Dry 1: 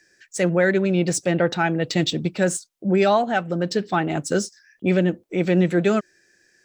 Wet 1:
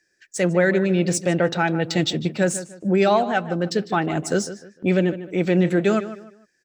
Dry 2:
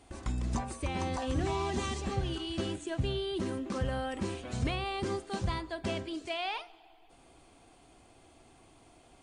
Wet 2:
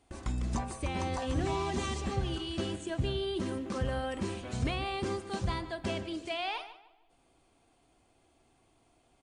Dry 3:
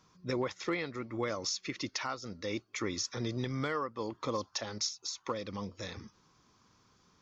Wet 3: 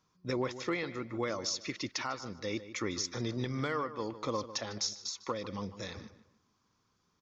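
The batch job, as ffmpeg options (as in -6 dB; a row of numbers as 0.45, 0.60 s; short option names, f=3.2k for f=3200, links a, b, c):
-filter_complex "[0:a]agate=range=-9dB:threshold=-50dB:ratio=16:detection=peak,asplit=2[a][b];[b]adelay=151,lowpass=f=3.3k:p=1,volume=-13dB,asplit=2[c][d];[d]adelay=151,lowpass=f=3.3k:p=1,volume=0.31,asplit=2[e][f];[f]adelay=151,lowpass=f=3.3k:p=1,volume=0.31[g];[c][e][g]amix=inputs=3:normalize=0[h];[a][h]amix=inputs=2:normalize=0"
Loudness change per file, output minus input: 0.0, 0.0, 0.0 LU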